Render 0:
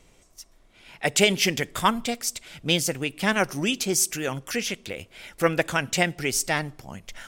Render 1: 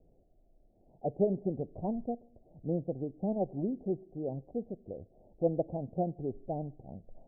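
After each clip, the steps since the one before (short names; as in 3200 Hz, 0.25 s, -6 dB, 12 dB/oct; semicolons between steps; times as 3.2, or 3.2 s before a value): steep low-pass 760 Hz 72 dB/oct; gain -6 dB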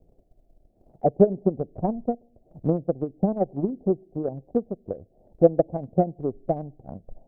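transient shaper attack +11 dB, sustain -2 dB; gain +3 dB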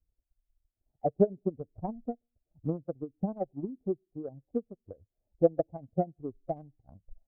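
per-bin expansion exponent 1.5; gain -6 dB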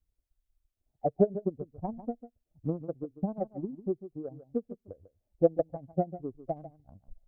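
echo 0.147 s -13.5 dB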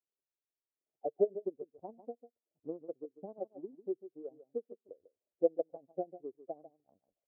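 ladder band-pass 490 Hz, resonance 45%; gain +2.5 dB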